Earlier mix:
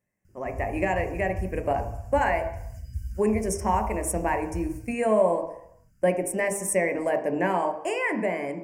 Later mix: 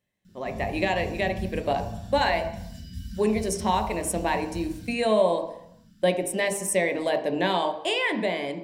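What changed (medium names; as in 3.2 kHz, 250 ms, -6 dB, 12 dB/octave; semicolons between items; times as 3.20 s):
background: send on; master: remove Butterworth band-stop 3.7 kHz, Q 1.1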